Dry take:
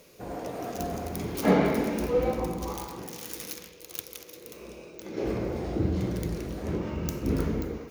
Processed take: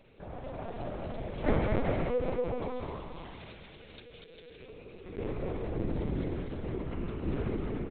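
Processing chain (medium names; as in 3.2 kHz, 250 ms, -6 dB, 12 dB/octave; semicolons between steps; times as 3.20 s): spectral selection erased 4.01–4.66 s, 540–1300 Hz; on a send: bouncing-ball echo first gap 240 ms, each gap 0.65×, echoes 5; on the sum: hum 60 Hz, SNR 29 dB; LPC vocoder at 8 kHz pitch kept; endings held to a fixed fall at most 110 dB/s; trim -5.5 dB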